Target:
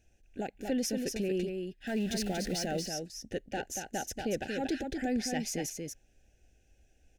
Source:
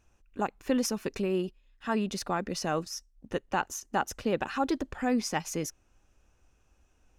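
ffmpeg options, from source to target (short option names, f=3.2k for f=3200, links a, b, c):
-filter_complex "[0:a]asettb=1/sr,asplit=3[a][b][c];[a]atrim=end=1.874[d];[b]atrim=start=1.87:end=2.66,asetpts=PTS-STARTPTS,afade=t=in:d=0.004:c=qsin,afade=t=out:st=0.786:d=0.004:c=qsin,aeval=exprs='val(0)+0.5*0.0112*sgn(val(0))':c=same[e];[c]atrim=start=2.656[f];[d][e]acrossfade=d=0.004:c1=hsin:c2=qsin[g];[g][f]acrossfade=d=0.004:c1=qsin:c2=hsin,asplit=2[h][i];[i]alimiter=level_in=3dB:limit=-24dB:level=0:latency=1:release=18,volume=-3dB,volume=-1dB[j];[h][j]amix=inputs=2:normalize=0,asoftclip=type=tanh:threshold=-15dB,asuperstop=centerf=1100:order=8:qfactor=1.5,aecho=1:1:234:0.562,volume=-6dB"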